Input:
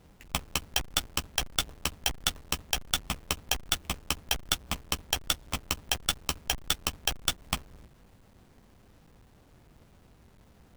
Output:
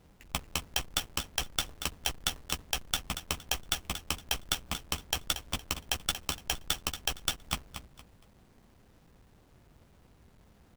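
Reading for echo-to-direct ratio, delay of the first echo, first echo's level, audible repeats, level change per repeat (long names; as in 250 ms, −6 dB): −9.5 dB, 232 ms, −10.0 dB, 3, −11.0 dB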